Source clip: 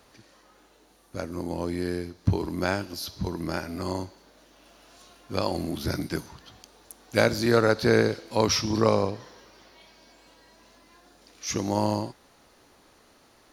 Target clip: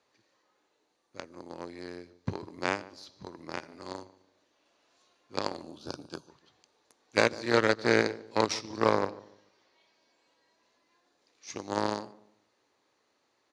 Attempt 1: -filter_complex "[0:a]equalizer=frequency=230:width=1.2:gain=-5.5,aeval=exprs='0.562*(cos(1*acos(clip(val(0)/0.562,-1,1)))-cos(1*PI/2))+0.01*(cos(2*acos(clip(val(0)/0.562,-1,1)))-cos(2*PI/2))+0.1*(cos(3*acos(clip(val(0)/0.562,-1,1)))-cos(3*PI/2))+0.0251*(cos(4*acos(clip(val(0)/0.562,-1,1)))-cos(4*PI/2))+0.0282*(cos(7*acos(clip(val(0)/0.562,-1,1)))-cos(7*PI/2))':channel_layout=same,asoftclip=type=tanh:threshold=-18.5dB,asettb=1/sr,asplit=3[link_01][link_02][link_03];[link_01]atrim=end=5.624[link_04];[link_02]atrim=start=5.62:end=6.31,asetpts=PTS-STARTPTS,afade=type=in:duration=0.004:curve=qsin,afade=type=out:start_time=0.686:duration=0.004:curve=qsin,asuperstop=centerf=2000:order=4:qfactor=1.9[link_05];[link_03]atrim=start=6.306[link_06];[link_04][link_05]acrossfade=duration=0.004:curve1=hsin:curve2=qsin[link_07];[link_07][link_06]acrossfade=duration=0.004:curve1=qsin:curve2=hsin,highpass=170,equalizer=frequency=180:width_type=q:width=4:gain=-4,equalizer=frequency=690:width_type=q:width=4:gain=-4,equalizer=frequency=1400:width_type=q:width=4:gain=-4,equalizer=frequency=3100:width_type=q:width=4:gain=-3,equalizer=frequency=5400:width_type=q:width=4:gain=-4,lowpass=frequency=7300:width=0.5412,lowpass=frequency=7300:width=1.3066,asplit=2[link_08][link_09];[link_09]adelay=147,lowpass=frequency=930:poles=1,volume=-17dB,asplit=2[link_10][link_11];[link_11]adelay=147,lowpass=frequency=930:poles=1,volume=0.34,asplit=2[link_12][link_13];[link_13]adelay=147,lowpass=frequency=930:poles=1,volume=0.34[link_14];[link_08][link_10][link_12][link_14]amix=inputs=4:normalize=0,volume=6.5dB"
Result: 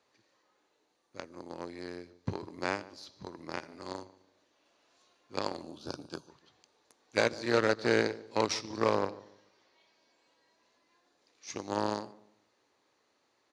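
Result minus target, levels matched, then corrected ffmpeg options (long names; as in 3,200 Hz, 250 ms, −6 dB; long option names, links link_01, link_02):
soft clipping: distortion +8 dB
-filter_complex "[0:a]equalizer=frequency=230:width=1.2:gain=-5.5,aeval=exprs='0.562*(cos(1*acos(clip(val(0)/0.562,-1,1)))-cos(1*PI/2))+0.01*(cos(2*acos(clip(val(0)/0.562,-1,1)))-cos(2*PI/2))+0.1*(cos(3*acos(clip(val(0)/0.562,-1,1)))-cos(3*PI/2))+0.0251*(cos(4*acos(clip(val(0)/0.562,-1,1)))-cos(4*PI/2))+0.0282*(cos(7*acos(clip(val(0)/0.562,-1,1)))-cos(7*PI/2))':channel_layout=same,asoftclip=type=tanh:threshold=-11dB,asettb=1/sr,asplit=3[link_01][link_02][link_03];[link_01]atrim=end=5.624[link_04];[link_02]atrim=start=5.62:end=6.31,asetpts=PTS-STARTPTS,afade=type=in:duration=0.004:curve=qsin,afade=type=out:start_time=0.686:duration=0.004:curve=qsin,asuperstop=centerf=2000:order=4:qfactor=1.9[link_05];[link_03]atrim=start=6.306[link_06];[link_04][link_05]acrossfade=duration=0.004:curve1=hsin:curve2=qsin[link_07];[link_07][link_06]acrossfade=duration=0.004:curve1=qsin:curve2=hsin,highpass=170,equalizer=frequency=180:width_type=q:width=4:gain=-4,equalizer=frequency=690:width_type=q:width=4:gain=-4,equalizer=frequency=1400:width_type=q:width=4:gain=-4,equalizer=frequency=3100:width_type=q:width=4:gain=-3,equalizer=frequency=5400:width_type=q:width=4:gain=-4,lowpass=frequency=7300:width=0.5412,lowpass=frequency=7300:width=1.3066,asplit=2[link_08][link_09];[link_09]adelay=147,lowpass=frequency=930:poles=1,volume=-17dB,asplit=2[link_10][link_11];[link_11]adelay=147,lowpass=frequency=930:poles=1,volume=0.34,asplit=2[link_12][link_13];[link_13]adelay=147,lowpass=frequency=930:poles=1,volume=0.34[link_14];[link_08][link_10][link_12][link_14]amix=inputs=4:normalize=0,volume=6.5dB"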